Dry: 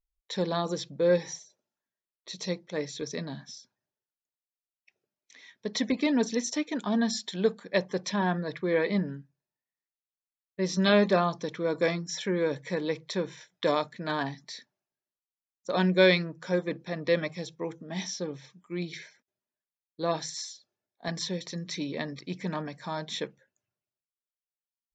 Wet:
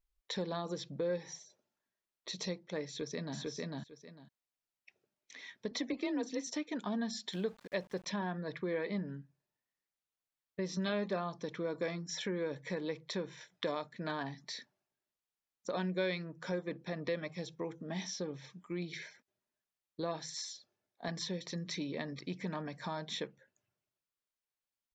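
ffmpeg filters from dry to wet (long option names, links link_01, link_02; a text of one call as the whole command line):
ffmpeg -i in.wav -filter_complex "[0:a]asplit=2[link_01][link_02];[link_02]afade=type=in:start_time=2.87:duration=0.01,afade=type=out:start_time=3.38:duration=0.01,aecho=0:1:450|900:0.794328|0.0794328[link_03];[link_01][link_03]amix=inputs=2:normalize=0,asettb=1/sr,asplit=3[link_04][link_05][link_06];[link_04]atrim=end=5.714[link_07];[link_05]atrim=start=5.71:end=6.47,asetpts=PTS-STARTPTS,afade=type=in:duration=0.004:curve=qsin,afade=type=out:start_time=0.756:duration=0.004:curve=qsin,afreqshift=33[link_08];[link_06]atrim=start=6.466[link_09];[link_07][link_08]acrossfade=duration=0.004:curve1=hsin:curve2=qsin[link_10];[link_10][link_09]acrossfade=duration=0.004:curve1=qsin:curve2=hsin,asettb=1/sr,asplit=3[link_11][link_12][link_13];[link_11]atrim=end=7.334[link_14];[link_12]atrim=start=7.33:end=8.06,asetpts=PTS-STARTPTS,afade=type=in:duration=0.004:curve=qsin,afade=type=out:start_time=0.726:duration=0.004:curve=qsin,aeval=exprs='val(0)*gte(abs(val(0)),0.00447)':channel_layout=same[link_15];[link_13]atrim=start=8.056[link_16];[link_14][link_15]acrossfade=duration=0.004:curve1=hsin:curve2=qsin[link_17];[link_17][link_16]acrossfade=duration=0.004:curve1=qsin:curve2=hsin,highshelf=frequency=6700:gain=-7,acompressor=threshold=-43dB:ratio=2.5,volume=3dB" out.wav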